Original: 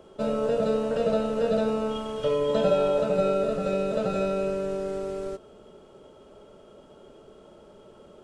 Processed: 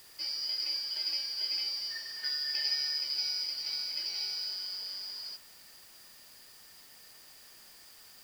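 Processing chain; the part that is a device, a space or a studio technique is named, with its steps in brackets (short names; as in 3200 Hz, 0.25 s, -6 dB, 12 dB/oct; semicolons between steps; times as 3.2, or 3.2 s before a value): split-band scrambled radio (four-band scrambler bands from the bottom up 4321; BPF 310–2900 Hz; white noise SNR 19 dB)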